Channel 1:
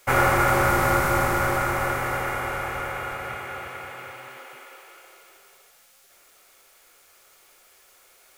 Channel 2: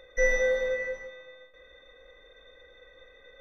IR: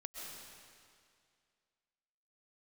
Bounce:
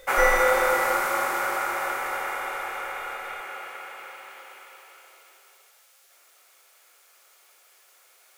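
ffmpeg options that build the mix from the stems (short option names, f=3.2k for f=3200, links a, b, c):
-filter_complex "[0:a]highpass=510,volume=-3.5dB,asplit=2[a][b];[b]volume=-8dB[c];[1:a]volume=2dB[d];[2:a]atrim=start_sample=2205[e];[c][e]afir=irnorm=-1:irlink=0[f];[a][d][f]amix=inputs=3:normalize=0"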